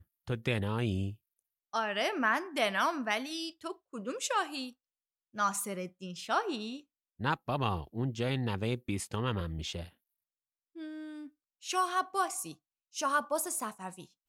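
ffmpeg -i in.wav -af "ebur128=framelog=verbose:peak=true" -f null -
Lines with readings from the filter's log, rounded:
Integrated loudness:
  I:         -33.7 LUFS
  Threshold: -44.3 LUFS
Loudness range:
  LRA:         4.5 LU
  Threshold: -54.7 LUFS
  LRA low:   -37.1 LUFS
  LRA high:  -32.5 LUFS
True peak:
  Peak:      -15.5 dBFS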